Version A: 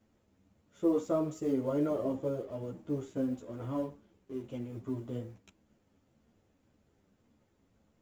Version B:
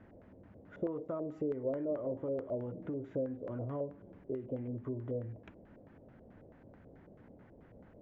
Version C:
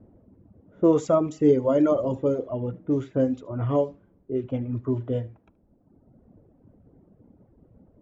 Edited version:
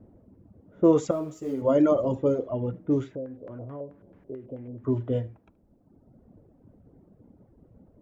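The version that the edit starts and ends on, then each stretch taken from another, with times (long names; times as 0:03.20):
C
0:01.11–0:01.62: punch in from A
0:03.12–0:04.84: punch in from B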